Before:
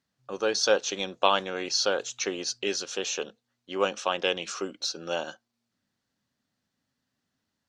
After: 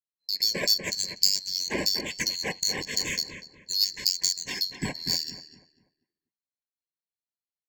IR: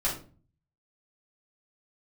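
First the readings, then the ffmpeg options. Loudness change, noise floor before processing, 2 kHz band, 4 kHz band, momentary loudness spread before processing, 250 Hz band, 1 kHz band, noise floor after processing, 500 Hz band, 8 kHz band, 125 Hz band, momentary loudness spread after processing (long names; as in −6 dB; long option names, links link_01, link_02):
+2.0 dB, −82 dBFS, −1.0 dB, +6.0 dB, 9 LU, −1.5 dB, −13.5 dB, below −85 dBFS, −11.5 dB, +4.0 dB, +6.5 dB, 8 LU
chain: -filter_complex "[0:a]afftfilt=real='real(if(lt(b,736),b+184*(1-2*mod(floor(b/184),2)),b),0)':imag='imag(if(lt(b,736),b+184*(1-2*mod(floor(b/184),2)),b),0)':win_size=2048:overlap=0.75,agate=range=-33dB:threshold=-57dB:ratio=3:detection=peak,equalizer=frequency=190:width=1.3:gain=7,acompressor=threshold=-38dB:ratio=2.5,asplit=2[link_01][link_02];[link_02]adelay=243,lowpass=frequency=2200:poles=1,volume=-7dB,asplit=2[link_03][link_04];[link_04]adelay=243,lowpass=frequency=2200:poles=1,volume=0.31,asplit=2[link_05][link_06];[link_06]adelay=243,lowpass=frequency=2200:poles=1,volume=0.31,asplit=2[link_07][link_08];[link_08]adelay=243,lowpass=frequency=2200:poles=1,volume=0.31[link_09];[link_03][link_05][link_07][link_09]amix=inputs=4:normalize=0[link_10];[link_01][link_10]amix=inputs=2:normalize=0,adynamicsmooth=sensitivity=4:basefreq=3600,crystalizer=i=2.5:c=0,asuperstop=centerf=1300:order=8:qfactor=2.4,volume=7dB"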